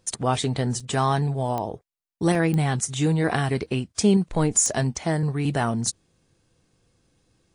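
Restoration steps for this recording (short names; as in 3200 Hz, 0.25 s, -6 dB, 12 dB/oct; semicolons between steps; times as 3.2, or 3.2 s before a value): de-click; interpolate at 0.8/2/2.35/3.66/4.95, 3.5 ms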